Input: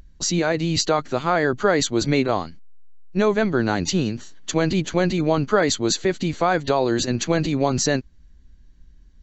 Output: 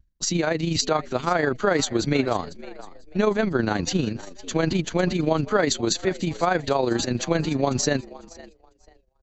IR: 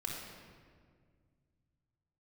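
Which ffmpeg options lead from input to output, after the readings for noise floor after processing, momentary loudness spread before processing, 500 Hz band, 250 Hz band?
−63 dBFS, 5 LU, −2.5 dB, −2.5 dB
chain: -filter_complex "[0:a]asplit=4[link_01][link_02][link_03][link_04];[link_02]adelay=499,afreqshift=83,volume=-19dB[link_05];[link_03]adelay=998,afreqshift=166,volume=-26.7dB[link_06];[link_04]adelay=1497,afreqshift=249,volume=-34.5dB[link_07];[link_01][link_05][link_06][link_07]amix=inputs=4:normalize=0,tremolo=f=25:d=0.519,agate=range=-33dB:threshold=-37dB:ratio=3:detection=peak"

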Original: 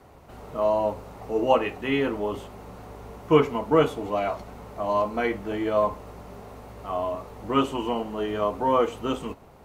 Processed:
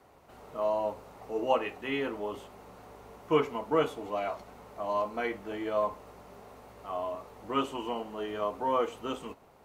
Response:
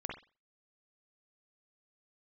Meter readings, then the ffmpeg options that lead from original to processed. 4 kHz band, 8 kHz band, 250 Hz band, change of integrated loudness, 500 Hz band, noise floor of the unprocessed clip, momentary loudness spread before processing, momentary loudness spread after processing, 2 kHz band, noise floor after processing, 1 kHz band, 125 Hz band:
−5.5 dB, can't be measured, −9.0 dB, −7.0 dB, −7.0 dB, −50 dBFS, 20 LU, 21 LU, −5.5 dB, −58 dBFS, −6.0 dB, −12.0 dB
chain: -af "lowshelf=frequency=210:gain=-9.5,volume=-5.5dB"

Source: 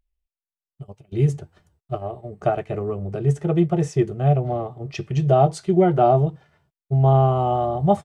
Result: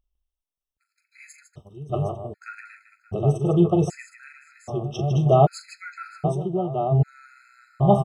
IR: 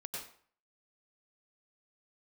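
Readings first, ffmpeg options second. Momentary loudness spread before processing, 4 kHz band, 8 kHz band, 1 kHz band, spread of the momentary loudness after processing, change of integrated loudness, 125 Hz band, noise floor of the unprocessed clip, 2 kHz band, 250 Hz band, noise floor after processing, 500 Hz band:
14 LU, −1.5 dB, −2.0 dB, −4.5 dB, 21 LU, −2.0 dB, −3.0 dB, below −85 dBFS, −1.0 dB, −2.0 dB, below −85 dBFS, −3.5 dB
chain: -af "aecho=1:1:40|153|578|767:0.299|0.376|0.1|0.355,afftfilt=real='re*gt(sin(2*PI*0.64*pts/sr)*(1-2*mod(floor(b*sr/1024/1300),2)),0)':imag='im*gt(sin(2*PI*0.64*pts/sr)*(1-2*mod(floor(b*sr/1024/1300),2)),0)':win_size=1024:overlap=0.75"

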